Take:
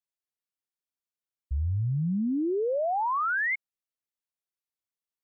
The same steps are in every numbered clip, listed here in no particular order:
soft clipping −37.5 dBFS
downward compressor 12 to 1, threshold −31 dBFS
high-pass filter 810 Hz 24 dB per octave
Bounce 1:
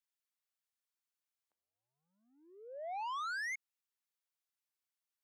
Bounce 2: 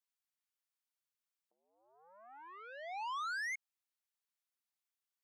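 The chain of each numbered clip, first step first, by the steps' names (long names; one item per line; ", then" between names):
downward compressor, then high-pass filter, then soft clipping
downward compressor, then soft clipping, then high-pass filter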